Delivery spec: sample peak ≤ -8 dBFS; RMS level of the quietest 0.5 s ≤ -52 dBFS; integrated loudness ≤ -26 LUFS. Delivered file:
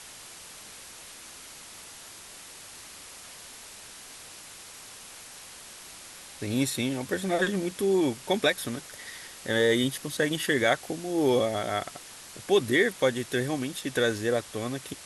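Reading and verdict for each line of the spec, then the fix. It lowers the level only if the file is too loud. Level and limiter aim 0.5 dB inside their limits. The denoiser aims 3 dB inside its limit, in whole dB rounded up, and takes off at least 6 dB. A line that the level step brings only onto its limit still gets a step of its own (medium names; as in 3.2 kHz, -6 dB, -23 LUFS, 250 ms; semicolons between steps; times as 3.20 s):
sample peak -9.5 dBFS: pass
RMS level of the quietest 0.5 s -46 dBFS: fail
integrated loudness -27.0 LUFS: pass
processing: noise reduction 9 dB, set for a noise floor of -46 dBFS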